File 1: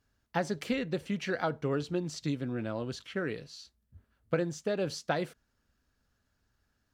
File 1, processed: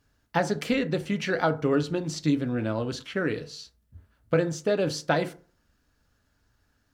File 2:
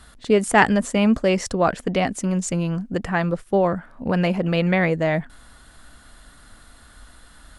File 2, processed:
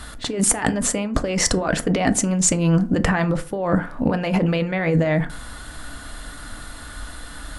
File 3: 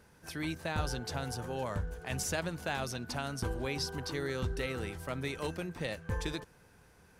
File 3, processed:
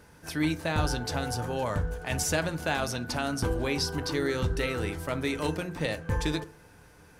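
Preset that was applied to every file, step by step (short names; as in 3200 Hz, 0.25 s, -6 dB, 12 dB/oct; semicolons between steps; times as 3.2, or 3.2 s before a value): negative-ratio compressor -26 dBFS, ratio -1; FDN reverb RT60 0.42 s, low-frequency decay 1×, high-frequency decay 0.45×, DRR 9 dB; gain +6 dB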